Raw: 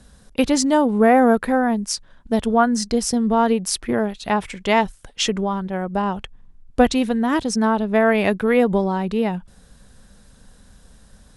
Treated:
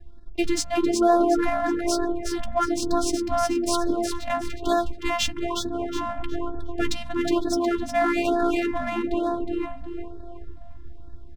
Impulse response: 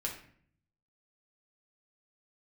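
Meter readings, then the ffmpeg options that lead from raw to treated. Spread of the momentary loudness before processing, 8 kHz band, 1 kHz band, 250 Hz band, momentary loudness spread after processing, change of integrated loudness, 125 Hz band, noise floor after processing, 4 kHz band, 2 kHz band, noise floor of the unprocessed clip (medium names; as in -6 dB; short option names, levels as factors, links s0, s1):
9 LU, -4.5 dB, -5.0 dB, -5.5 dB, 10 LU, -5.5 dB, -9.5 dB, -37 dBFS, -3.5 dB, -6.5 dB, -51 dBFS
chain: -filter_complex "[0:a]equalizer=f=670:t=o:w=0.77:g=-3.5,bandreject=f=60:t=h:w=6,bandreject=f=120:t=h:w=6,bandreject=f=180:t=h:w=6,bandreject=f=240:t=h:w=6,bandreject=f=300:t=h:w=6,acrossover=split=140|4000[s0][s1][s2];[s0]aeval=exprs='0.106*sin(PI/2*3.55*val(0)/0.106)':c=same[s3];[s3][s1][s2]amix=inputs=3:normalize=0,asplit=6[s4][s5][s6][s7][s8][s9];[s5]adelay=364,afreqshift=62,volume=0.596[s10];[s6]adelay=728,afreqshift=124,volume=0.226[s11];[s7]adelay=1092,afreqshift=186,volume=0.0861[s12];[s8]adelay=1456,afreqshift=248,volume=0.0327[s13];[s9]adelay=1820,afreqshift=310,volume=0.0124[s14];[s4][s10][s11][s12][s13][s14]amix=inputs=6:normalize=0,aeval=exprs='sgn(val(0))*max(abs(val(0))-0.00501,0)':c=same,afftfilt=real='hypot(re,im)*cos(PI*b)':imag='0':win_size=512:overlap=0.75,adynamicsmooth=sensitivity=5:basefreq=2200,asplit=2[s15][s16];[s16]adelay=13,volume=0.266[s17];[s15][s17]amix=inputs=2:normalize=0,afftfilt=real='re*(1-between(b*sr/1024,380*pow(2500/380,0.5+0.5*sin(2*PI*1.1*pts/sr))/1.41,380*pow(2500/380,0.5+0.5*sin(2*PI*1.1*pts/sr))*1.41))':imag='im*(1-between(b*sr/1024,380*pow(2500/380,0.5+0.5*sin(2*PI*1.1*pts/sr))/1.41,380*pow(2500/380,0.5+0.5*sin(2*PI*1.1*pts/sr))*1.41))':win_size=1024:overlap=0.75"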